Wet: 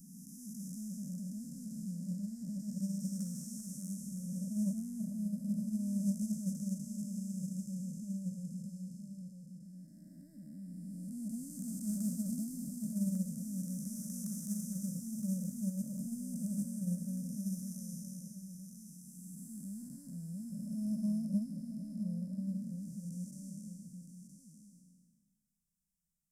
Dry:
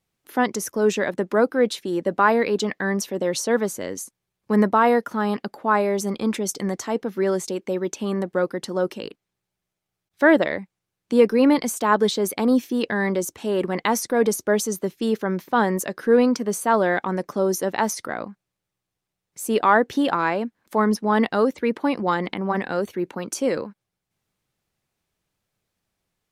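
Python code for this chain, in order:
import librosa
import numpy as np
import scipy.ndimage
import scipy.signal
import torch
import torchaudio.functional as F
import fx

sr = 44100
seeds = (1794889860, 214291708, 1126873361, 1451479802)

p1 = fx.spec_blur(x, sr, span_ms=864.0)
p2 = scipy.signal.sosfilt(scipy.signal.ellip(3, 1.0, 40, [180.0, 7400.0], 'bandstop', fs=sr, output='sos'), p1)
p3 = fx.peak_eq(p2, sr, hz=5200.0, db=13.0, octaves=0.34)
p4 = 10.0 ** (-29.5 / 20.0) * np.tanh(p3 / 10.0 ** (-29.5 / 20.0))
p5 = fx.fixed_phaser(p4, sr, hz=550.0, stages=8)
p6 = p5 + fx.echo_single(p5, sr, ms=967, db=-7.0, dry=0)
p7 = fx.upward_expand(p6, sr, threshold_db=-38.0, expansion=2.5)
y = F.gain(torch.from_numpy(p7), 5.5).numpy()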